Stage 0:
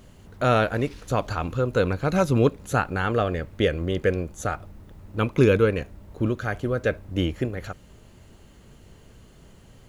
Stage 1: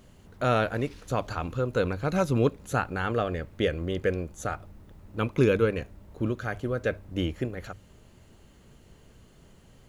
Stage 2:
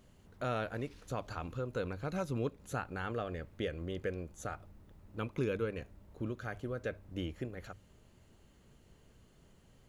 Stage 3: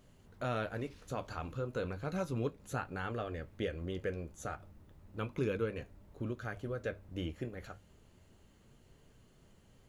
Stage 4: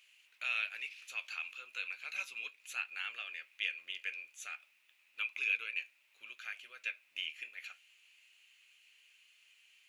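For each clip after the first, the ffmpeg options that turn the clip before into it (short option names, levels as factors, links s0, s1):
-af "bandreject=f=50:t=h:w=6,bandreject=f=100:t=h:w=6,volume=0.631"
-af "acompressor=threshold=0.0355:ratio=1.5,volume=0.398"
-af "flanger=delay=6.7:depth=7.7:regen=-61:speed=0.33:shape=triangular,volume=1.58"
-af "highpass=f=2500:t=q:w=8.1,volume=1.12"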